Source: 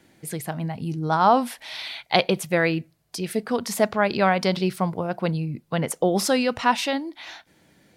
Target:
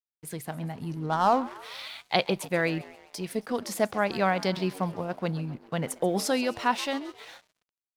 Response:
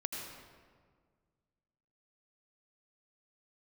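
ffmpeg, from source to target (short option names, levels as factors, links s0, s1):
-filter_complex "[0:a]asplit=6[s0][s1][s2][s3][s4][s5];[s1]adelay=134,afreqshift=92,volume=0.126[s6];[s2]adelay=268,afreqshift=184,volume=0.0759[s7];[s3]adelay=402,afreqshift=276,volume=0.0452[s8];[s4]adelay=536,afreqshift=368,volume=0.0272[s9];[s5]adelay=670,afreqshift=460,volume=0.0164[s10];[s0][s6][s7][s8][s9][s10]amix=inputs=6:normalize=0,asettb=1/sr,asplit=3[s11][s12][s13];[s11]atrim=end=1.064[s14];[s12]atrim=start=1.06:end=1.56,asetpts=PTS-STARTPTS,afade=t=in:d=0.004:c=qsin,afade=t=out:st=0.496:d=0.004:c=qsin,adynamicsmooth=sensitivity=2:basefreq=1700[s15];[s13]atrim=start=1.556[s16];[s14][s15]acrossfade=d=0.004:c1=hsin:c2=qsin[s17];[s17][s16]acrossfade=d=0.004:c1=qsin:c2=hsin,aeval=exprs='sgn(val(0))*max(abs(val(0))-0.00447,0)':c=same,volume=0.562"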